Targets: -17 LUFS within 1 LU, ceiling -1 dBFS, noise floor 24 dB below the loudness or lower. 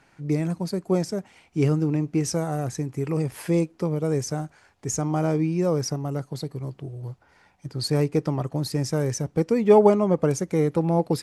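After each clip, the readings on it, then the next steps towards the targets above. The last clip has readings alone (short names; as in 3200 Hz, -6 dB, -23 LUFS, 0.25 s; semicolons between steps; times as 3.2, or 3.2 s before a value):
loudness -24.5 LUFS; peak -4.5 dBFS; loudness target -17.0 LUFS
-> gain +7.5 dB; limiter -1 dBFS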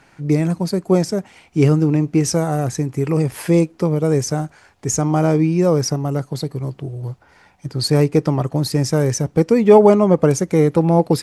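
loudness -17.5 LUFS; peak -1.0 dBFS; noise floor -53 dBFS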